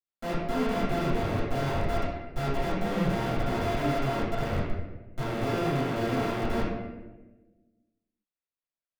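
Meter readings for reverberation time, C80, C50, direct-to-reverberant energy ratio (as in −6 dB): 1.2 s, 2.5 dB, 0.5 dB, −12.5 dB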